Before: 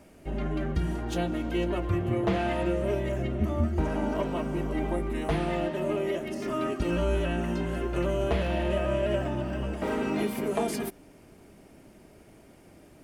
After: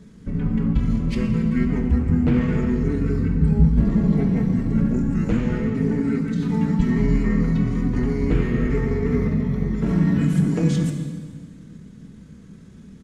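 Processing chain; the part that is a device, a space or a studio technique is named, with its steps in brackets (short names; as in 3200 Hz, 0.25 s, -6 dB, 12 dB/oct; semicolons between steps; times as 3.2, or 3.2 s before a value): graphic EQ 250/1000/4000 Hz +9/-6/+4 dB; monster voice (pitch shift -6 st; low shelf 230 Hz +6.5 dB; reverb RT60 1.7 s, pre-delay 3 ms, DRR 3.5 dB)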